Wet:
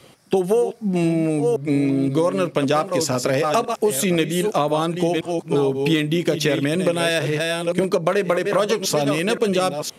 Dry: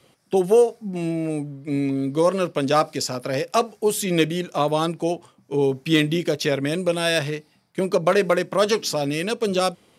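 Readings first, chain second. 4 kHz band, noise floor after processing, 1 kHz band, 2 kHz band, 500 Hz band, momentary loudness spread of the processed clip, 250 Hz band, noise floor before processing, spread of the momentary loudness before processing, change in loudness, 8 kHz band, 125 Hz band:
+1.0 dB, -47 dBFS, +1.0 dB, +2.0 dB, +1.5 dB, 2 LU, +3.0 dB, -60 dBFS, 8 LU, +2.0 dB, +3.5 dB, +3.5 dB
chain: chunks repeated in reverse 521 ms, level -9 dB; dynamic bell 4.8 kHz, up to -6 dB, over -46 dBFS, Q 3.1; compression 6:1, threshold -25 dBFS, peak gain reduction 13 dB; trim +9 dB

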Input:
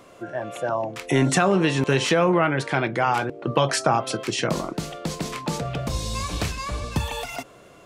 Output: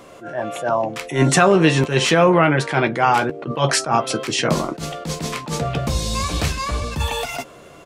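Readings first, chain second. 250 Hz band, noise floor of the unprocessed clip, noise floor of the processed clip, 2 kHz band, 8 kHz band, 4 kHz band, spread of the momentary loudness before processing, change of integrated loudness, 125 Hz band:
+4.0 dB, -49 dBFS, -43 dBFS, +5.0 dB, +5.5 dB, +5.5 dB, 12 LU, +5.0 dB, +4.5 dB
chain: doubling 13 ms -9 dB; attacks held to a fixed rise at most 160 dB/s; trim +5.5 dB

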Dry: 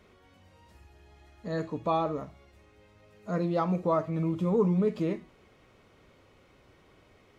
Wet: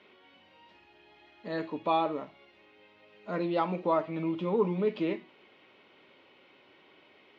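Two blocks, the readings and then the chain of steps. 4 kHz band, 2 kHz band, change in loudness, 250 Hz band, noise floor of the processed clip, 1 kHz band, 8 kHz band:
+4.5 dB, +3.5 dB, -1.5 dB, -3.0 dB, -61 dBFS, +1.0 dB, no reading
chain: cabinet simulation 380–3800 Hz, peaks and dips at 480 Hz -7 dB, 690 Hz -6 dB, 1.2 kHz -8 dB, 1.7 kHz -4 dB, 2.9 kHz +3 dB; trim +6 dB

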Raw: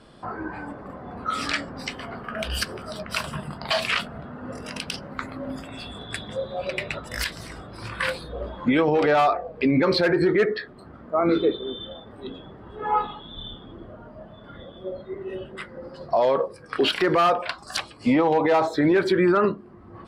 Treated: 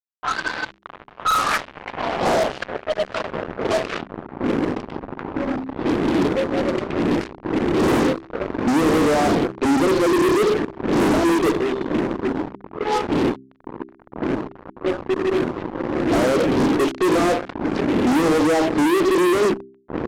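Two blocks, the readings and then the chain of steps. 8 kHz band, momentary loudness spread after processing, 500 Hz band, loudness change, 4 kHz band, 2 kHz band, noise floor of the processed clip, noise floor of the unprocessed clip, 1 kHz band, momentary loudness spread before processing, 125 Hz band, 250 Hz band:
+6.5 dB, 12 LU, +4.0 dB, +3.5 dB, -0.5 dB, +2.5 dB, -50 dBFS, -46 dBFS, +3.0 dB, 19 LU, +4.5 dB, +7.0 dB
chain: wind noise 340 Hz -28 dBFS; band-pass sweep 1.5 kHz -> 320 Hz, 0.62–4.30 s; fuzz box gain 37 dB, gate -41 dBFS; de-hum 65.73 Hz, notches 6; level-controlled noise filter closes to 1.3 kHz, open at -13.5 dBFS; trim -2 dB

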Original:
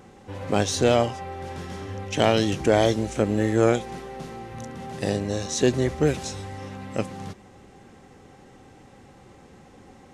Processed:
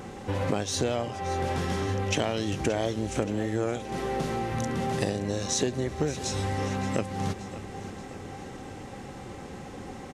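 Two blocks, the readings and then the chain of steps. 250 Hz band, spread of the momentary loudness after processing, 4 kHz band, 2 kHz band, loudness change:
-4.5 dB, 14 LU, -3.5 dB, -3.0 dB, -5.5 dB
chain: compression 10:1, threshold -33 dBFS, peak gain reduction 19.5 dB; feedback delay 575 ms, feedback 54%, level -14.5 dB; trim +8.5 dB

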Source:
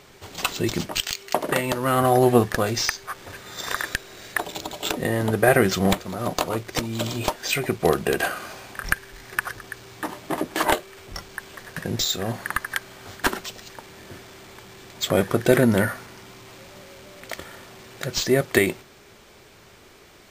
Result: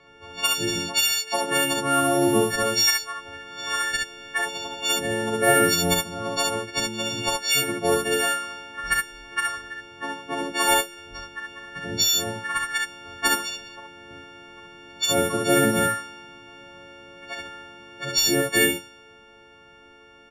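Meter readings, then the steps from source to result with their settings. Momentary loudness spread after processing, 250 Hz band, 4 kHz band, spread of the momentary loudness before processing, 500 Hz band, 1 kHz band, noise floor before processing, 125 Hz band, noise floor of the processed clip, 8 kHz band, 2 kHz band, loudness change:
16 LU, -2.5 dB, +5.5 dB, 23 LU, -2.5 dB, +0.5 dB, -50 dBFS, -6.5 dB, -51 dBFS, +6.0 dB, +1.5 dB, +1.0 dB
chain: partials quantised in pitch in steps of 4 st; resampled via 32 kHz; on a send: early reflections 43 ms -7 dB, 68 ms -3.5 dB; on the sum: level-controlled noise filter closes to 2.1 kHz, open at -11.5 dBFS; trim -6 dB

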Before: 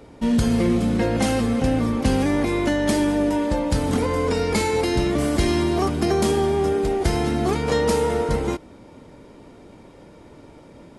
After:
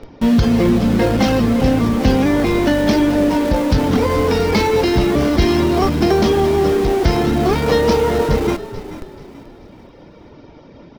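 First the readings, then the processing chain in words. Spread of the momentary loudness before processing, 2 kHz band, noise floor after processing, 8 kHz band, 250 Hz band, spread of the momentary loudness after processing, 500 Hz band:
3 LU, +5.5 dB, -42 dBFS, 0.0 dB, +6.0 dB, 2 LU, +6.0 dB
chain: Chebyshev low-pass 5.8 kHz, order 5; reverb removal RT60 0.57 s; in parallel at -9 dB: Schmitt trigger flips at -34.5 dBFS; on the sum: frequency-shifting echo 434 ms, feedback 38%, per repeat -35 Hz, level -14 dB; trim +5.5 dB

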